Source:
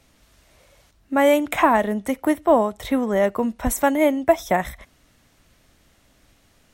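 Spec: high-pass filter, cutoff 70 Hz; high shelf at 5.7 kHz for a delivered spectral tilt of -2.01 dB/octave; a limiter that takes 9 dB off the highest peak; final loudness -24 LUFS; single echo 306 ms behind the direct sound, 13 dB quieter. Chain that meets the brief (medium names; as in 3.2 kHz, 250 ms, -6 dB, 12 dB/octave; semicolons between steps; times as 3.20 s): high-pass 70 Hz; treble shelf 5.7 kHz -8 dB; peak limiter -12.5 dBFS; delay 306 ms -13 dB; trim -0.5 dB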